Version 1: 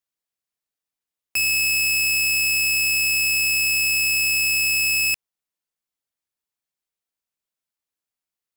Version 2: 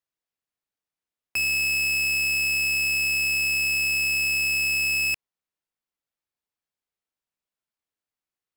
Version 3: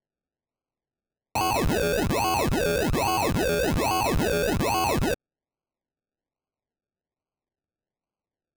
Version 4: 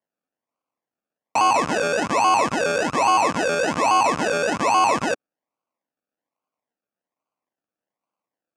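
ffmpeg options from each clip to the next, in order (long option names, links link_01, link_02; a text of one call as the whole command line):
ffmpeg -i in.wav -af "highshelf=frequency=4400:gain=-9" out.wav
ffmpeg -i in.wav -af "acrusher=samples=34:mix=1:aa=0.000001:lfo=1:lforange=20.4:lforate=1.2" out.wav
ffmpeg -i in.wav -af "highpass=290,equalizer=frequency=390:width_type=q:width=4:gain=-9,equalizer=frequency=1100:width_type=q:width=4:gain=7,equalizer=frequency=3900:width_type=q:width=4:gain=-9,lowpass=frequency=8100:width=0.5412,lowpass=frequency=8100:width=1.3066,volume=5.5dB" out.wav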